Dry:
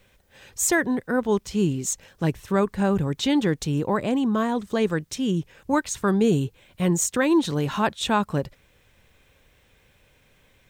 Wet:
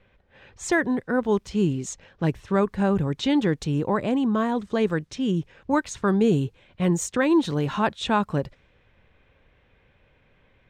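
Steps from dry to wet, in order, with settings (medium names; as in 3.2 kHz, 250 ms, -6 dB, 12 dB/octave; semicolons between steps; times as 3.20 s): treble shelf 6.6 kHz -11.5 dB; level-controlled noise filter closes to 2.8 kHz, open at -20.5 dBFS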